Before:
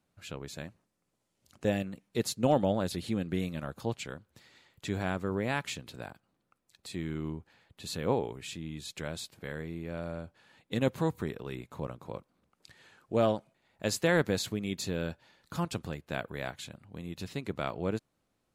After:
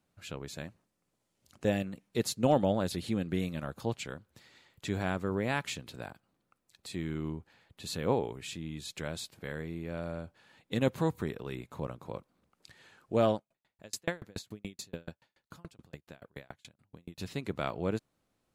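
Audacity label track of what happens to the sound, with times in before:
13.360000	17.180000	sawtooth tremolo in dB decaying 7 Hz, depth 39 dB

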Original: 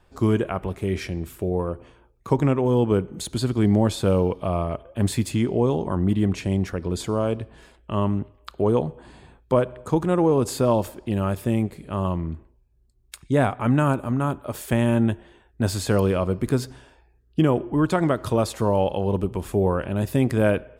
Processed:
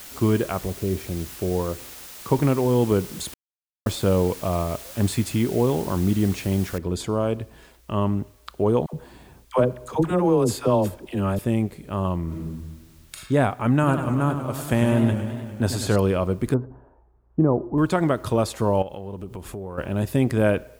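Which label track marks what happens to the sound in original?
0.650000	1.290000	time-frequency box 780–10000 Hz -11 dB
3.340000	3.860000	mute
6.780000	6.780000	noise floor step -41 dB -62 dB
8.860000	11.390000	phase dispersion lows, late by 75 ms, half as late at 620 Hz
12.240000	13.180000	reverb throw, RT60 1.3 s, DRR -4 dB
13.730000	15.960000	modulated delay 100 ms, feedback 72%, depth 156 cents, level -9 dB
16.540000	17.780000	low-pass 1.1 kHz 24 dB/octave
18.820000	19.780000	compression 4:1, threshold -32 dBFS

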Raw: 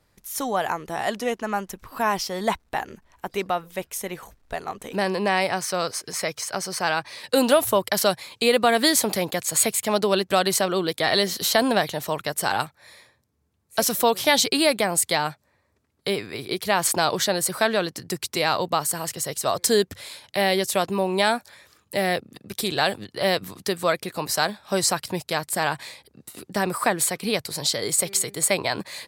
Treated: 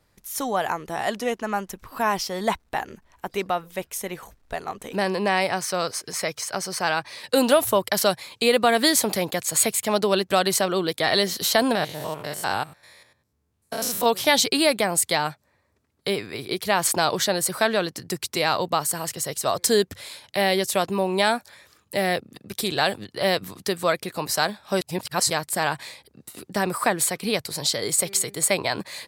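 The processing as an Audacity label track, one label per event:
11.750000	14.060000	spectrogram pixelated in time every 100 ms
24.810000	25.300000	reverse

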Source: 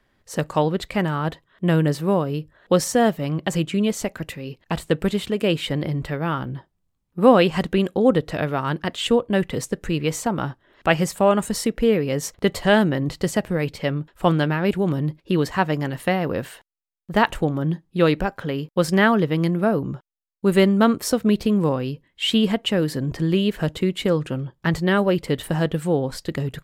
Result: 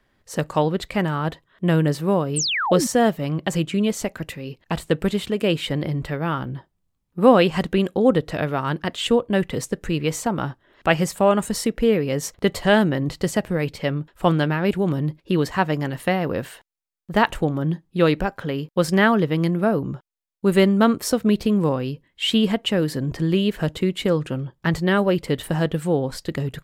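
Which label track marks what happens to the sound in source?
2.360000	2.870000	painted sound fall 210–9400 Hz -23 dBFS

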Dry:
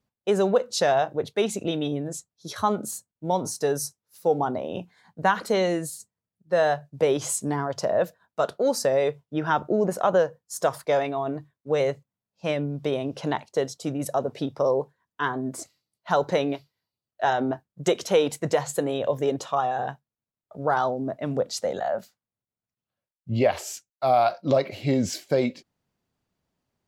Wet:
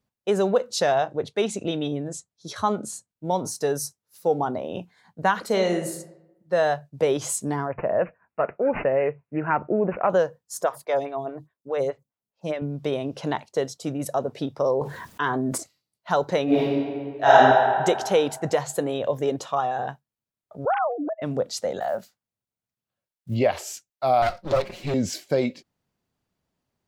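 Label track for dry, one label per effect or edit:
0.910000	3.100000	low-pass 9.9 kHz 24 dB/octave
5.460000	5.940000	reverb throw, RT60 0.91 s, DRR 6 dB
7.680000	10.100000	careless resampling rate divided by 8×, down none, up filtered
10.620000	12.620000	lamp-driven phase shifter 4.8 Hz
14.810000	15.580000	level flattener amount 70%
16.440000	17.370000	reverb throw, RT60 2 s, DRR -11 dB
20.650000	21.220000	formants replaced by sine waves
21.810000	23.370000	block-companded coder 7-bit
24.220000	24.940000	comb filter that takes the minimum delay 5.5 ms

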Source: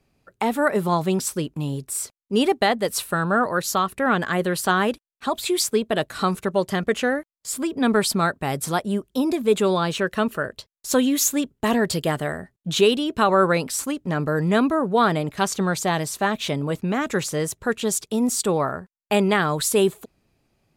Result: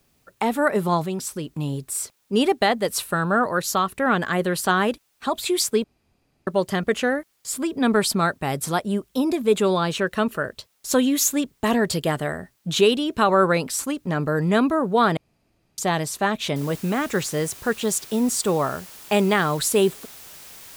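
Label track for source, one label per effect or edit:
1.050000	1.480000	compression 1.5:1, threshold -33 dBFS
5.840000	6.470000	room tone
15.170000	15.780000	room tone
16.560000	16.560000	noise floor step -68 dB -43 dB

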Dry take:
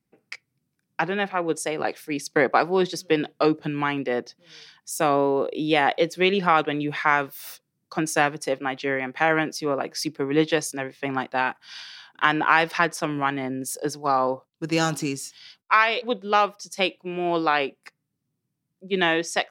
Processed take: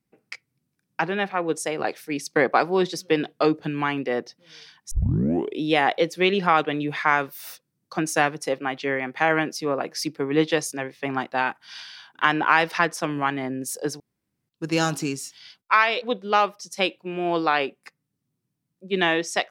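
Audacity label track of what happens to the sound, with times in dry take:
4.910000	4.910000	tape start 0.68 s
14.000000	14.490000	room tone

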